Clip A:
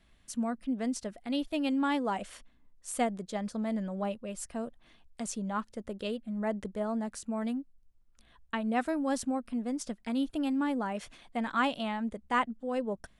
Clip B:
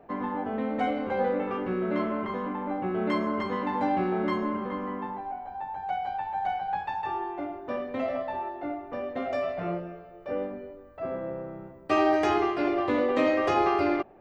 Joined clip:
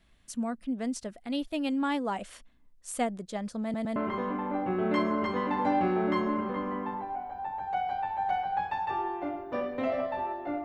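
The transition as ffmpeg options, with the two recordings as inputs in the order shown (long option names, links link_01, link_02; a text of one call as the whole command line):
ffmpeg -i cue0.wav -i cue1.wav -filter_complex "[0:a]apad=whole_dur=10.64,atrim=end=10.64,asplit=3[link_01][link_02][link_03];[link_01]atrim=end=3.742[link_04];[link_02]atrim=start=3.628:end=3.742[link_05];[link_03]atrim=start=3.628:end=3.742[link_06];[1:a]atrim=start=2.118:end=8.8[link_07];[link_04][link_05]acrossfade=duration=0.004:curve1=hsin:curve2=hsin[link_08];[link_08][link_06]acrossfade=duration=0.004:curve1=hsin:curve2=hsin[link_09];[link_09][link_07]acrossfade=duration=0.004:curve1=hsin:curve2=hsin" out.wav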